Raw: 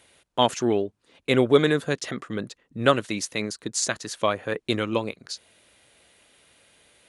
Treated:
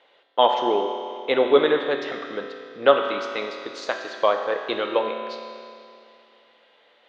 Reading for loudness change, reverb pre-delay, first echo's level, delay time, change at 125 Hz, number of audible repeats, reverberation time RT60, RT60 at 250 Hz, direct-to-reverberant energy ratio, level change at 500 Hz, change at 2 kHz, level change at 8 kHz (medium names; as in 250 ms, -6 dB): +2.0 dB, 5 ms, no echo, no echo, under -15 dB, no echo, 2.5 s, 2.5 s, 3.0 dB, +3.5 dB, +0.5 dB, under -15 dB